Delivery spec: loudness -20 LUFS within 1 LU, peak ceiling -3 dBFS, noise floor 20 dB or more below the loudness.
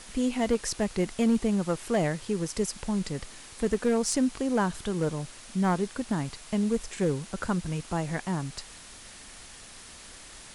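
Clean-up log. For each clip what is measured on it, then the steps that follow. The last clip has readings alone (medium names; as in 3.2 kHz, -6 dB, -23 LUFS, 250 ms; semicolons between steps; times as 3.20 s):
clipped samples 0.6%; clipping level -18.0 dBFS; noise floor -48 dBFS; noise floor target -49 dBFS; loudness -29.0 LUFS; peak level -18.0 dBFS; loudness target -20.0 LUFS
-> clip repair -18 dBFS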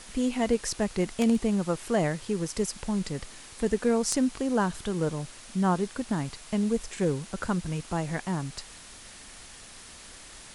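clipped samples 0.0%; noise floor -48 dBFS; noise floor target -49 dBFS
-> noise print and reduce 6 dB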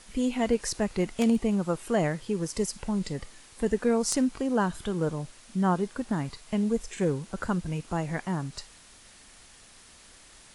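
noise floor -53 dBFS; loudness -29.0 LUFS; peak level -9.5 dBFS; loudness target -20.0 LUFS
-> trim +9 dB; peak limiter -3 dBFS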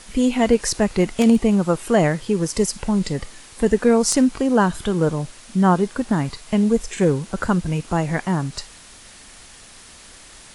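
loudness -20.0 LUFS; peak level -3.0 dBFS; noise floor -44 dBFS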